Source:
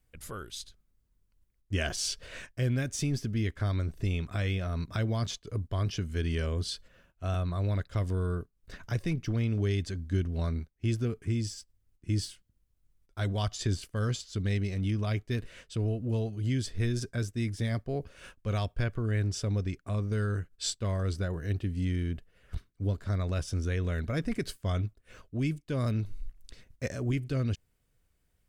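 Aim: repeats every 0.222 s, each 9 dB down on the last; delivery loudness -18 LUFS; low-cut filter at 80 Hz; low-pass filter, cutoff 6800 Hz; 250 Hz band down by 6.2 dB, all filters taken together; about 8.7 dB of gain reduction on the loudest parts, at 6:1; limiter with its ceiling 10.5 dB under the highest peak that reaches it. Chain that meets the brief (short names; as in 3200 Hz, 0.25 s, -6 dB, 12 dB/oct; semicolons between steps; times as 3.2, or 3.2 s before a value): HPF 80 Hz; LPF 6800 Hz; bell 250 Hz -8.5 dB; compressor 6:1, threshold -37 dBFS; limiter -35.5 dBFS; feedback echo 0.222 s, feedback 35%, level -9 dB; gain +26 dB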